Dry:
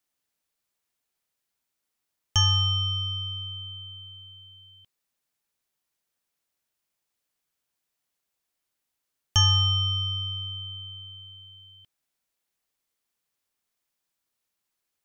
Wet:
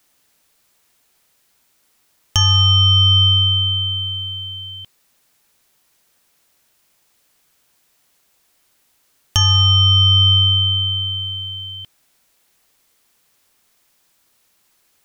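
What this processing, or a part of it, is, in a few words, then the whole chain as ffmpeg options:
loud club master: -af "acompressor=threshold=0.0447:ratio=2.5,asoftclip=type=hard:threshold=0.141,alimiter=level_in=17.8:limit=0.891:release=50:level=0:latency=1,volume=0.596"

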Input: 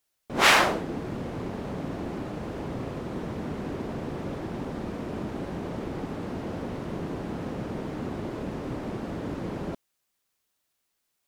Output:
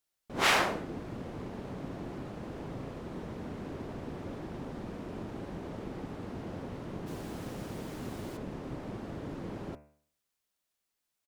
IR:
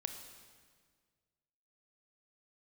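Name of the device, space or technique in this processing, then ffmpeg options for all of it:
octave pedal: -filter_complex "[0:a]asplit=2[s0][s1];[s1]asetrate=22050,aresample=44100,atempo=2,volume=0.355[s2];[s0][s2]amix=inputs=2:normalize=0,asplit=3[s3][s4][s5];[s3]afade=t=out:st=7.06:d=0.02[s6];[s4]aemphasis=mode=production:type=75kf,afade=t=in:st=7.06:d=0.02,afade=t=out:st=8.36:d=0.02[s7];[s5]afade=t=in:st=8.36:d=0.02[s8];[s6][s7][s8]amix=inputs=3:normalize=0,bandreject=f=74.46:t=h:w=4,bandreject=f=148.92:t=h:w=4,bandreject=f=223.38:t=h:w=4,bandreject=f=297.84:t=h:w=4,bandreject=f=372.3:t=h:w=4,bandreject=f=446.76:t=h:w=4,bandreject=f=521.22:t=h:w=4,bandreject=f=595.68:t=h:w=4,bandreject=f=670.14:t=h:w=4,bandreject=f=744.6:t=h:w=4,bandreject=f=819.06:t=h:w=4,bandreject=f=893.52:t=h:w=4,bandreject=f=967.98:t=h:w=4,bandreject=f=1042.44:t=h:w=4,bandreject=f=1116.9:t=h:w=4,bandreject=f=1191.36:t=h:w=4,bandreject=f=1265.82:t=h:w=4,bandreject=f=1340.28:t=h:w=4,bandreject=f=1414.74:t=h:w=4,bandreject=f=1489.2:t=h:w=4,bandreject=f=1563.66:t=h:w=4,bandreject=f=1638.12:t=h:w=4,bandreject=f=1712.58:t=h:w=4,bandreject=f=1787.04:t=h:w=4,bandreject=f=1861.5:t=h:w=4,bandreject=f=1935.96:t=h:w=4,bandreject=f=2010.42:t=h:w=4,bandreject=f=2084.88:t=h:w=4,bandreject=f=2159.34:t=h:w=4,bandreject=f=2233.8:t=h:w=4,bandreject=f=2308.26:t=h:w=4,bandreject=f=2382.72:t=h:w=4,bandreject=f=2457.18:t=h:w=4,bandreject=f=2531.64:t=h:w=4,bandreject=f=2606.1:t=h:w=4,bandreject=f=2680.56:t=h:w=4,bandreject=f=2755.02:t=h:w=4,bandreject=f=2829.48:t=h:w=4,volume=0.447"

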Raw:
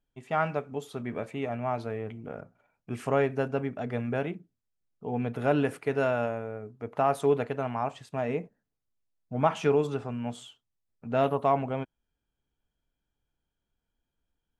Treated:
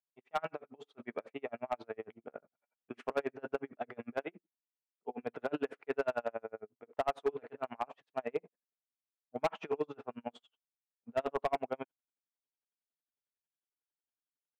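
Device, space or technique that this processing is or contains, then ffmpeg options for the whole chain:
helicopter radio: -filter_complex "[0:a]agate=range=0.282:threshold=0.00891:ratio=16:detection=peak,highpass=340,lowpass=2900,aeval=exprs='val(0)*pow(10,-39*(0.5-0.5*cos(2*PI*11*n/s))/20)':c=same,asoftclip=type=hard:threshold=0.0531,asettb=1/sr,asplit=3[s0][s1][s2];[s0]atrim=end=4.184[s3];[s1]atrim=start=4.18:end=5.23,asetpts=PTS-STARTPTS,afade=t=in:d=0.004:c=qsin,afade=t=out:st=1.046:d=0.004:c=qsin,highpass=200[s4];[s2]atrim=start=5.226[s5];[s3][s4]acrossfade=d=0.004:c1=hsin:c2=qsin[s6];[s6][s5]acrossfade=d=0.004:c1=qsin:c2=hsin,volume=1.12"

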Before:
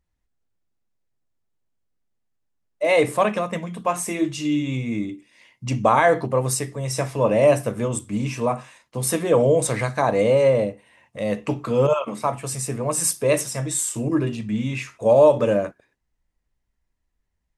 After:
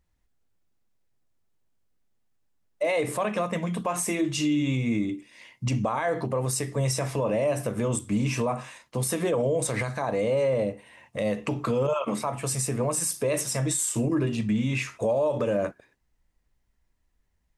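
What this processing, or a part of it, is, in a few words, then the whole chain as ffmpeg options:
stacked limiters: -af "alimiter=limit=0.299:level=0:latency=1:release=320,alimiter=limit=0.188:level=0:latency=1:release=60,alimiter=limit=0.0891:level=0:latency=1:release=162,volume=1.5"

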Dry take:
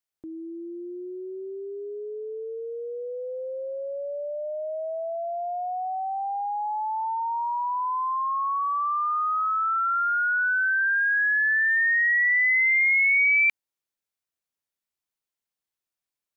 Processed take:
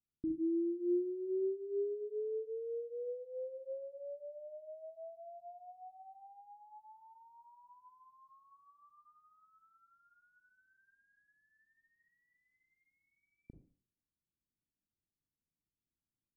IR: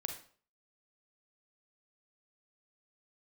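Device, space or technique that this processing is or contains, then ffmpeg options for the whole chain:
next room: -filter_complex "[0:a]lowpass=f=290:w=0.5412,lowpass=f=290:w=1.3066[s0];[1:a]atrim=start_sample=2205[s1];[s0][s1]afir=irnorm=-1:irlink=0,volume=2.82"

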